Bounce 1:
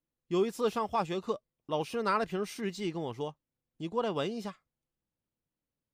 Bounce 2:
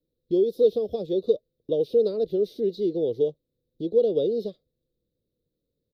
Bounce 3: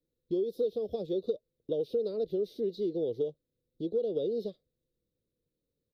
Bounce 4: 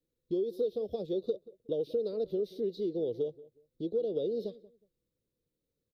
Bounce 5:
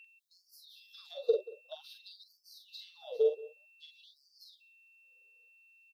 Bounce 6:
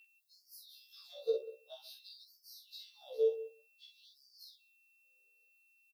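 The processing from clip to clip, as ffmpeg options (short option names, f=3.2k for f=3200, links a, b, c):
-filter_complex "[0:a]lowshelf=f=340:g=6,acrossover=split=280|2200[a][b][c];[a]acompressor=threshold=-47dB:ratio=4[d];[b]acompressor=threshold=-31dB:ratio=4[e];[c]acompressor=threshold=-51dB:ratio=4[f];[d][e][f]amix=inputs=3:normalize=0,firequalizer=gain_entry='entry(240,0);entry(480,12);entry(910,-27);entry(1400,-29);entry(2600,-23);entry(3700,6);entry(7300,-22);entry(12000,-3)':delay=0.05:min_phase=1,volume=4.5dB"
-af "acompressor=threshold=-23dB:ratio=4,volume=-4.5dB"
-filter_complex "[0:a]asplit=2[a][b];[b]adelay=183,lowpass=f=1.5k:p=1,volume=-19dB,asplit=2[c][d];[d]adelay=183,lowpass=f=1.5k:p=1,volume=0.23[e];[a][c][e]amix=inputs=3:normalize=0,volume=-1dB"
-filter_complex "[0:a]aeval=exprs='val(0)+0.00126*sin(2*PI*2700*n/s)':c=same,asplit=2[a][b];[b]adelay=45,volume=-4.5dB[c];[a][c]amix=inputs=2:normalize=0,afftfilt=real='re*gte(b*sr/1024,360*pow(4500/360,0.5+0.5*sin(2*PI*0.52*pts/sr)))':imag='im*gte(b*sr/1024,360*pow(4500/360,0.5+0.5*sin(2*PI*0.52*pts/sr)))':win_size=1024:overlap=0.75,volume=4.5dB"
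-filter_complex "[0:a]acrossover=split=2200[a][b];[a]aecho=1:1:136:0.112[c];[b]aexciter=amount=2.3:drive=6.2:freq=4.2k[d];[c][d]amix=inputs=2:normalize=0,afftfilt=real='re*1.73*eq(mod(b,3),0)':imag='im*1.73*eq(mod(b,3),0)':win_size=2048:overlap=0.75,volume=-3.5dB"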